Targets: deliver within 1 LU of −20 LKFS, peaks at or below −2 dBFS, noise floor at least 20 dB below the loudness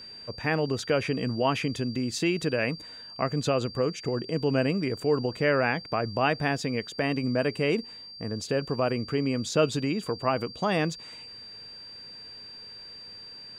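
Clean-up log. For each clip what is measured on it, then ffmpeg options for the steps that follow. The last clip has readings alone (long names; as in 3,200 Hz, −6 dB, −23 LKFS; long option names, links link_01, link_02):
interfering tone 4,700 Hz; level of the tone −42 dBFS; integrated loudness −28.0 LKFS; sample peak −11.5 dBFS; target loudness −20.0 LKFS
→ -af "bandreject=frequency=4700:width=30"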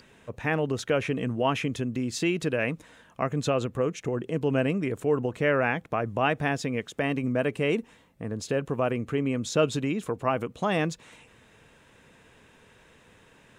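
interfering tone none found; integrated loudness −28.0 LKFS; sample peak −11.5 dBFS; target loudness −20.0 LKFS
→ -af "volume=8dB"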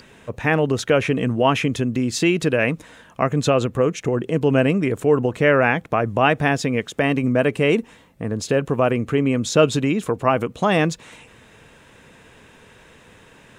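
integrated loudness −20.0 LKFS; sample peak −3.5 dBFS; background noise floor −50 dBFS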